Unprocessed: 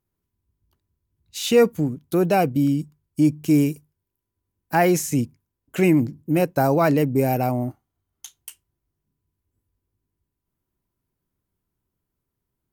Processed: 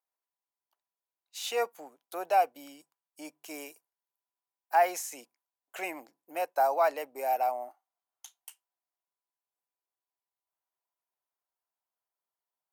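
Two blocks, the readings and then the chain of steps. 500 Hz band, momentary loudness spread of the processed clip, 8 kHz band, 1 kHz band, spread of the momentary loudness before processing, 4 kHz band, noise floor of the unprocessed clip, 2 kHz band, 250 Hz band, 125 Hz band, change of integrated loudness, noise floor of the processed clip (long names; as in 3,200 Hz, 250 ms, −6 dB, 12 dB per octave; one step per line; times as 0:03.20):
−10.5 dB, 21 LU, −9.5 dB, −2.5 dB, 14 LU, −9.0 dB, −82 dBFS, −8.5 dB, −29.5 dB, below −40 dB, −9.5 dB, below −85 dBFS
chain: four-pole ladder high-pass 630 Hz, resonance 50%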